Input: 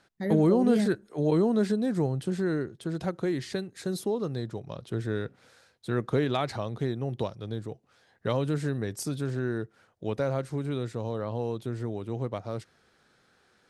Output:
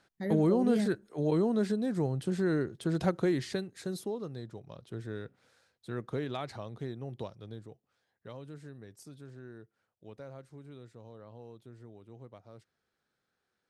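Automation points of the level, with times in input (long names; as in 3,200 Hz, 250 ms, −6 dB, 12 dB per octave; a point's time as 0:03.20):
0:01.97 −4 dB
0:03.06 +2.5 dB
0:04.32 −9 dB
0:07.43 −9 dB
0:08.27 −18 dB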